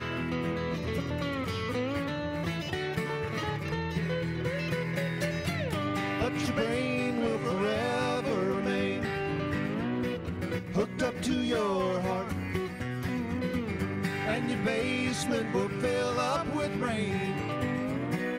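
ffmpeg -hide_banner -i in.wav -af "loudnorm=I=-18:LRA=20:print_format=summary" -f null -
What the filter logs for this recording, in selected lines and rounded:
Input Integrated:    -31.0 LUFS
Input True Peak:     -17.3 dBTP
Input LRA:             2.4 LU
Input Threshold:     -41.0 LUFS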